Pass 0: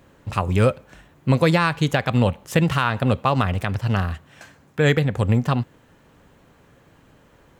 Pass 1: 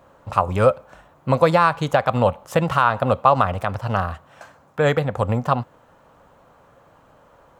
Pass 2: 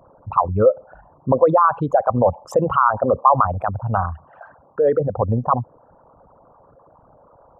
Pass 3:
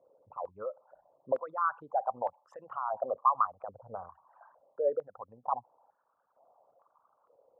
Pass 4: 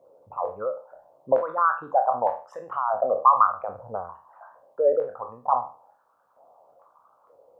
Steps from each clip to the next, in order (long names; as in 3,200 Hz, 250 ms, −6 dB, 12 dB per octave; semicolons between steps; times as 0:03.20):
flat-topped bell 840 Hz +10.5 dB; level −4 dB
spectral envelope exaggerated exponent 3; level +1.5 dB
band-pass on a step sequencer 2.2 Hz 490–1,700 Hz; level −8.5 dB
peak hold with a decay on every bin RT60 0.37 s; level +8 dB